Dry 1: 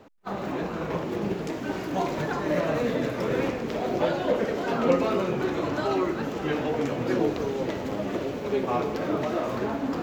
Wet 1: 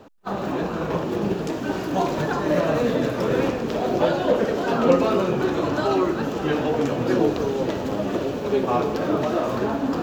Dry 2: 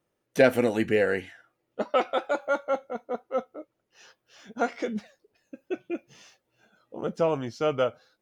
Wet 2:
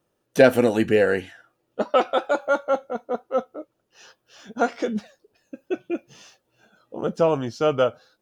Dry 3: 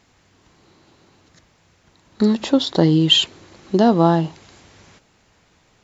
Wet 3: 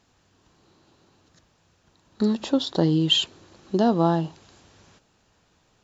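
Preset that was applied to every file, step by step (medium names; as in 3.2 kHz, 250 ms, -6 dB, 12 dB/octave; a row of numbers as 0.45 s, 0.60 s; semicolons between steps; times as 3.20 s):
peaking EQ 2.1 kHz -7.5 dB 0.27 oct; normalise loudness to -23 LUFS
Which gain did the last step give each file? +5.0 dB, +5.0 dB, -6.0 dB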